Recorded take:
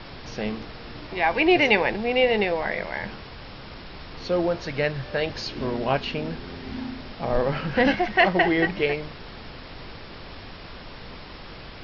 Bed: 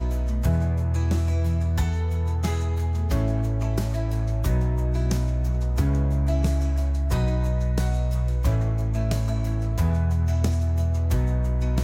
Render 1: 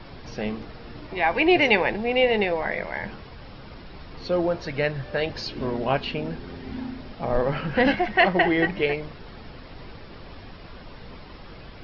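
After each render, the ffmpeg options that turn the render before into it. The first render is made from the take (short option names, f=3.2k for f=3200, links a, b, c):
-af "afftdn=nr=7:nf=-41"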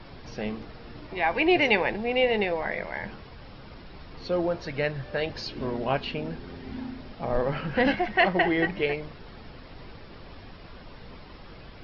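-af "volume=-3dB"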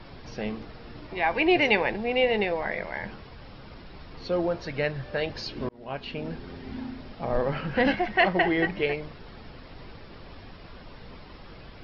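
-filter_complex "[0:a]asplit=2[a][b];[a]atrim=end=5.69,asetpts=PTS-STARTPTS,afade=t=out:st=5.686:d=0.004:c=hsin[c];[b]atrim=start=5.69,asetpts=PTS-STARTPTS,afade=t=in:d=0.62[d];[c][d]concat=n=2:v=0:a=1"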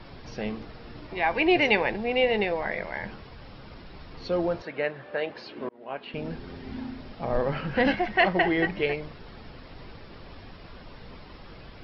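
-filter_complex "[0:a]asettb=1/sr,asplit=3[a][b][c];[a]atrim=end=4.624[d];[b]atrim=start=4.62:end=6.14,asetpts=PTS-STARTPTS,afade=t=in:d=0.004:c=qsin,afade=t=out:st=1.516:d=0.004:c=qsin,highpass=280,lowpass=2.7k[e];[c]atrim=start=6.136[f];[d][e]acrossfade=d=0.004:c1=hsin:c2=qsin[g];[g][f]acrossfade=d=0.004:c1=qsin:c2=hsin"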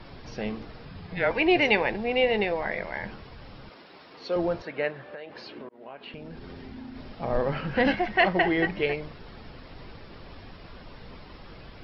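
-filter_complex "[0:a]asettb=1/sr,asplit=3[a][b][c];[a]atrim=end=0.854[d];[b]atrim=start=0.85:end=1.31,asetpts=PTS-STARTPTS,afade=t=in:d=0.004:c=qsin,afade=t=out:st=0.456:d=0.004:c=qsin,afreqshift=-200[e];[c]atrim=start=1.306[f];[d][e]acrossfade=d=0.004:c1=hsin:c2=qsin[g];[g][f]acrossfade=d=0.004:c1=qsin:c2=hsin,asettb=1/sr,asplit=3[h][i][j];[h]atrim=end=3.694[k];[i]atrim=start=3.69:end=4.36,asetpts=PTS-STARTPTS,afade=t=in:d=0.004:c=qsin,afade=t=out:st=0.666:d=0.004:c=qsin,highpass=310[l];[j]atrim=start=4.356[m];[k][l]acrossfade=d=0.004:c1=hsin:c2=qsin[n];[n][m]acrossfade=d=0.004:c1=qsin:c2=hsin,asettb=1/sr,asplit=3[o][p][q];[o]atrim=end=5.054[r];[p]atrim=start=5.05:end=6.96,asetpts=PTS-STARTPTS,afade=t=in:d=0.004:c=qsin,afade=t=out:st=1.906:d=0.004:c=qsin,acompressor=threshold=-37dB:ratio=6:attack=3.2:release=140:knee=1:detection=peak[s];[q]atrim=start=6.956[t];[r][s]acrossfade=d=0.004:c1=hsin:c2=qsin[u];[u][t]acrossfade=d=0.004:c1=qsin:c2=hsin"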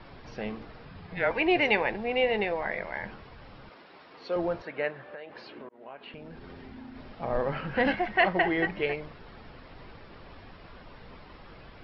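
-af "lowpass=f=1.4k:p=1,tiltshelf=f=810:g=-4.5"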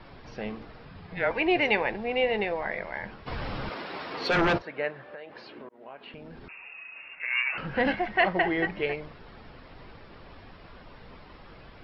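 -filter_complex "[0:a]asplit=3[a][b][c];[a]afade=t=out:st=3.26:d=0.02[d];[b]aeval=exprs='0.106*sin(PI/2*3.55*val(0)/0.106)':c=same,afade=t=in:st=3.26:d=0.02,afade=t=out:st=4.57:d=0.02[e];[c]afade=t=in:st=4.57:d=0.02[f];[d][e][f]amix=inputs=3:normalize=0,asettb=1/sr,asplit=3[g][h][i];[g]atrim=end=6.484[j];[h]atrim=start=6.48:end=7.58,asetpts=PTS-STARTPTS,afade=t=in:d=0.004:c=qsin,afade=t=out:st=1.096:d=0.004:c=qsin,lowpass=f=2.4k:t=q:w=0.5098,lowpass=f=2.4k:t=q:w=0.6013,lowpass=f=2.4k:t=q:w=0.9,lowpass=f=2.4k:t=q:w=2.563,afreqshift=-2800[k];[i]atrim=start=7.576[l];[j][k]acrossfade=d=0.004:c1=hsin:c2=qsin[m];[m][l]acrossfade=d=0.004:c1=qsin:c2=hsin"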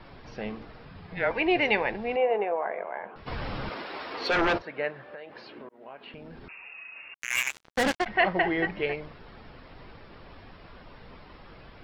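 -filter_complex "[0:a]asettb=1/sr,asplit=3[a][b][c];[a]atrim=end=2.164[d];[b]atrim=start=2.16:end=3.16,asetpts=PTS-STARTPTS,afade=t=in:d=0.004:c=qsin,afade=t=out:st=0.996:d=0.004:c=qsin,highpass=380,equalizer=f=430:t=q:w=4:g=5,equalizer=f=700:t=q:w=4:g=6,equalizer=f=1.1k:t=q:w=4:g=4,equalizer=f=1.9k:t=q:w=4:g=-10,lowpass=f=2.2k:w=0.5412,lowpass=f=2.2k:w=1.3066[e];[c]atrim=start=3.156[f];[d][e]acrossfade=d=0.004:c1=hsin:c2=qsin[g];[g][f]acrossfade=d=0.004:c1=qsin:c2=hsin,asettb=1/sr,asplit=3[h][i][j];[h]atrim=end=3.824[k];[i]atrim=start=3.82:end=4.59,asetpts=PTS-STARTPTS,afade=t=in:d=0.004:c=qsin,afade=t=out:st=0.766:d=0.004:c=qsin,equalizer=f=150:w=1.5:g=-10[l];[j]atrim=start=4.586[m];[k][l]acrossfade=d=0.004:c1=hsin:c2=qsin[n];[n][m]acrossfade=d=0.004:c1=qsin:c2=hsin,asettb=1/sr,asplit=3[o][p][q];[o]atrim=end=7.144[r];[p]atrim=start=7.14:end=8.06,asetpts=PTS-STARTPTS,afade=t=in:d=0.004:c=qsin,afade=t=out:st=0.916:d=0.004:c=qsin,acrusher=bits=3:mix=0:aa=0.5[s];[q]atrim=start=8.056[t];[r][s]acrossfade=d=0.004:c1=hsin:c2=qsin[u];[u][t]acrossfade=d=0.004:c1=qsin:c2=hsin"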